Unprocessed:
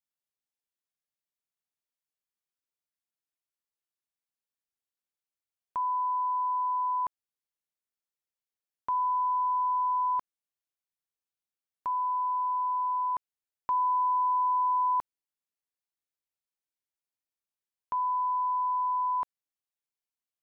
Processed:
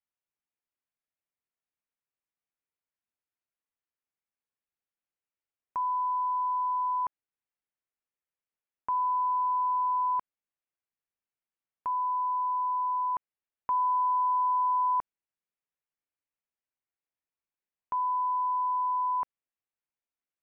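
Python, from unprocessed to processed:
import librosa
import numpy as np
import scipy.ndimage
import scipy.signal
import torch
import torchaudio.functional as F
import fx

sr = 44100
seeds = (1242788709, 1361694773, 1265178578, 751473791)

y = scipy.signal.sosfilt(scipy.signal.butter(6, 2800.0, 'lowpass', fs=sr, output='sos'), x)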